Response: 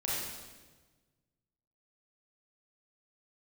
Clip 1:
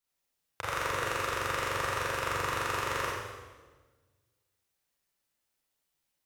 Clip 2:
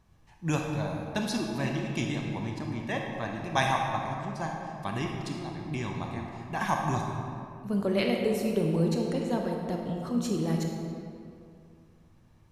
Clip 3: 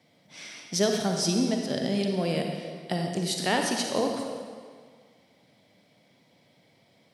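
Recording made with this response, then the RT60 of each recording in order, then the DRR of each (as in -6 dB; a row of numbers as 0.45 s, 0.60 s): 1; 1.3 s, 2.4 s, 1.8 s; -7.0 dB, 0.5 dB, 2.0 dB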